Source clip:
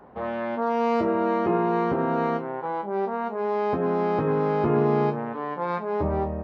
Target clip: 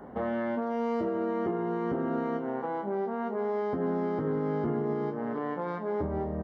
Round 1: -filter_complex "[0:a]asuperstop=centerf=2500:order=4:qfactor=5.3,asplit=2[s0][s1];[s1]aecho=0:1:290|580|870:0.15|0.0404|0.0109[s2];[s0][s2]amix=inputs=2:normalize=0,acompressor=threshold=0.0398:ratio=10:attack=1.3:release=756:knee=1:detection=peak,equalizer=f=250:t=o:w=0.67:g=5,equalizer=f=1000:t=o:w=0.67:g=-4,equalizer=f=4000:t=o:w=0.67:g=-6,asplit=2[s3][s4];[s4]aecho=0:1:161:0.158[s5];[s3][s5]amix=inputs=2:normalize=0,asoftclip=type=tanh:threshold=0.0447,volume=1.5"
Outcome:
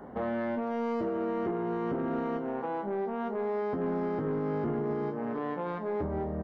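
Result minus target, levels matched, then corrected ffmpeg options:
saturation: distortion +16 dB
-filter_complex "[0:a]asuperstop=centerf=2500:order=4:qfactor=5.3,asplit=2[s0][s1];[s1]aecho=0:1:290|580|870:0.15|0.0404|0.0109[s2];[s0][s2]amix=inputs=2:normalize=0,acompressor=threshold=0.0398:ratio=10:attack=1.3:release=756:knee=1:detection=peak,equalizer=f=250:t=o:w=0.67:g=5,equalizer=f=1000:t=o:w=0.67:g=-4,equalizer=f=4000:t=o:w=0.67:g=-6,asplit=2[s3][s4];[s4]aecho=0:1:161:0.158[s5];[s3][s5]amix=inputs=2:normalize=0,asoftclip=type=tanh:threshold=0.133,volume=1.5"

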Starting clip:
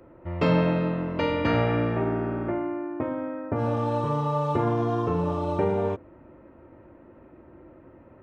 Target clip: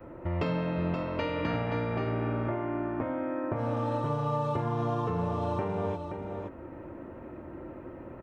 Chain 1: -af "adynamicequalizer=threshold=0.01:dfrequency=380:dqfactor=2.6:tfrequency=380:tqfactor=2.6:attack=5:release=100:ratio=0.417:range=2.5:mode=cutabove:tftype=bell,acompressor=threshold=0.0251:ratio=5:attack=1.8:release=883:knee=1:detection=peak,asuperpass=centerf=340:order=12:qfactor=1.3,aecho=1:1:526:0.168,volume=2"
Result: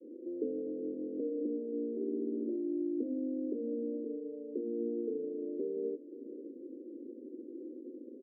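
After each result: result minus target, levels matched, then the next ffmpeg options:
echo-to-direct -9 dB; 250 Hz band +4.0 dB
-af "adynamicequalizer=threshold=0.01:dfrequency=380:dqfactor=2.6:tfrequency=380:tqfactor=2.6:attack=5:release=100:ratio=0.417:range=2.5:mode=cutabove:tftype=bell,acompressor=threshold=0.0251:ratio=5:attack=1.8:release=883:knee=1:detection=peak,asuperpass=centerf=340:order=12:qfactor=1.3,aecho=1:1:526:0.473,volume=2"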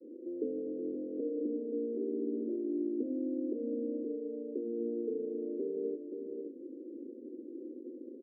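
250 Hz band +4.0 dB
-af "adynamicequalizer=threshold=0.01:dfrequency=380:dqfactor=2.6:tfrequency=380:tqfactor=2.6:attack=5:release=100:ratio=0.417:range=2.5:mode=cutabove:tftype=bell,acompressor=threshold=0.0251:ratio=5:attack=1.8:release=883:knee=1:detection=peak,aecho=1:1:526:0.473,volume=2"

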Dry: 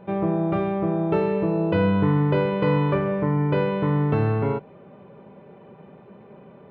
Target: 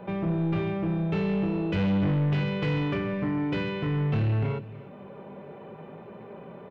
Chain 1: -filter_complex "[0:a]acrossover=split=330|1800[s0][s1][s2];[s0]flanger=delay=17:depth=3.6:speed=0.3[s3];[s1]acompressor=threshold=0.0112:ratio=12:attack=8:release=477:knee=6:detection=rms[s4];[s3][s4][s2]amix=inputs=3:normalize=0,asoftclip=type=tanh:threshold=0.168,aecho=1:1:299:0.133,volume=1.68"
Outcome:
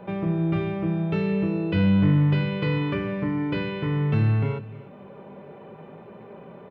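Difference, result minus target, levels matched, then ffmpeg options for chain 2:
saturation: distortion -12 dB
-filter_complex "[0:a]acrossover=split=330|1800[s0][s1][s2];[s0]flanger=delay=17:depth=3.6:speed=0.3[s3];[s1]acompressor=threshold=0.0112:ratio=12:attack=8:release=477:knee=6:detection=rms[s4];[s3][s4][s2]amix=inputs=3:normalize=0,asoftclip=type=tanh:threshold=0.0501,aecho=1:1:299:0.133,volume=1.68"

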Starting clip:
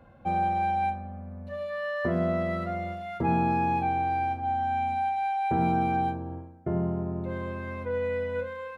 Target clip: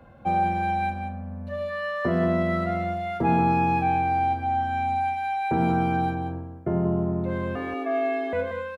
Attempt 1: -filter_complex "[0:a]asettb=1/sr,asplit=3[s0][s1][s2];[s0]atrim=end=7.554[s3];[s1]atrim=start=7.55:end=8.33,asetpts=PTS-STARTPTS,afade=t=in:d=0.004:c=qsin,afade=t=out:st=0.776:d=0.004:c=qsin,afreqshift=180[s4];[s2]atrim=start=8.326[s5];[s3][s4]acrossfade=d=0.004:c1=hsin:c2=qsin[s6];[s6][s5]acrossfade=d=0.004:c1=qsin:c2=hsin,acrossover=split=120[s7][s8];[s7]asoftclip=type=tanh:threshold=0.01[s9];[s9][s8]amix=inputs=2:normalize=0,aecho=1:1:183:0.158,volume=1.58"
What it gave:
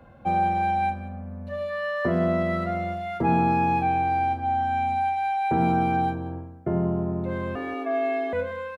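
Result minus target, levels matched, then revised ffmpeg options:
echo-to-direct -7 dB
-filter_complex "[0:a]asettb=1/sr,asplit=3[s0][s1][s2];[s0]atrim=end=7.554[s3];[s1]atrim=start=7.55:end=8.33,asetpts=PTS-STARTPTS,afade=t=in:d=0.004:c=qsin,afade=t=out:st=0.776:d=0.004:c=qsin,afreqshift=180[s4];[s2]atrim=start=8.326[s5];[s3][s4]acrossfade=d=0.004:c1=hsin:c2=qsin[s6];[s6][s5]acrossfade=d=0.004:c1=qsin:c2=hsin,acrossover=split=120[s7][s8];[s7]asoftclip=type=tanh:threshold=0.01[s9];[s9][s8]amix=inputs=2:normalize=0,aecho=1:1:183:0.376,volume=1.58"

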